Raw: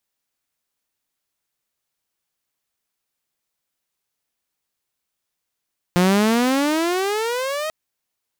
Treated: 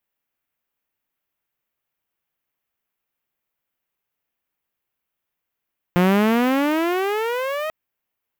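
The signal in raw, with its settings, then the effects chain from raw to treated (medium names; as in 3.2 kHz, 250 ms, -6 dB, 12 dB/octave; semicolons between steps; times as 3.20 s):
gliding synth tone saw, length 1.74 s, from 174 Hz, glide +22.5 st, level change -10 dB, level -10.5 dB
high-order bell 6.2 kHz -11 dB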